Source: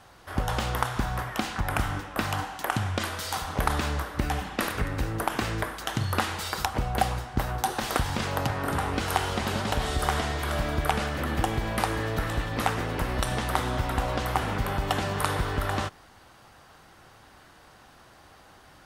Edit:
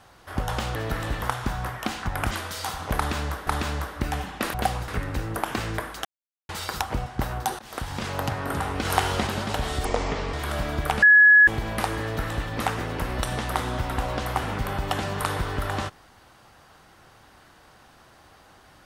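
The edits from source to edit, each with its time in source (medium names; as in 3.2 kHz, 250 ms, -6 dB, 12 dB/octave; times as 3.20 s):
1.84–2.99 s: delete
3.65–4.15 s: loop, 2 plays
5.89–6.33 s: mute
6.90–7.24 s: move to 4.72 s
7.77–8.50 s: fade in equal-power, from -22 dB
9.03–9.45 s: gain +3.5 dB
10.03–10.33 s: speed 62%
11.02–11.47 s: bleep 1.69 kHz -10 dBFS
12.02–12.49 s: copy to 0.75 s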